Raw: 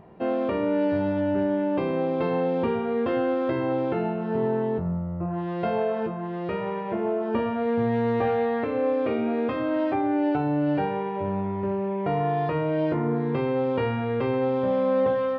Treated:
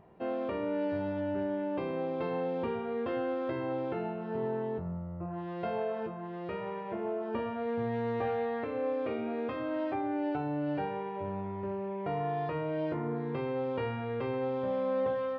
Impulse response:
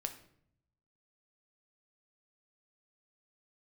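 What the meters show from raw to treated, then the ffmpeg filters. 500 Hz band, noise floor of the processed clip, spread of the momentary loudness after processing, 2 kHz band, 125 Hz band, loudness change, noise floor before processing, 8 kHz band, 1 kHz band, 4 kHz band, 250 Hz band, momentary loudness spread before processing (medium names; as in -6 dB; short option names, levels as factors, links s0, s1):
-8.0 dB, -39 dBFS, 5 LU, -7.5 dB, -9.0 dB, -8.5 dB, -31 dBFS, no reading, -7.5 dB, -7.5 dB, -9.5 dB, 5 LU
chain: -af "equalizer=f=210:w=1.1:g=-3,volume=0.422"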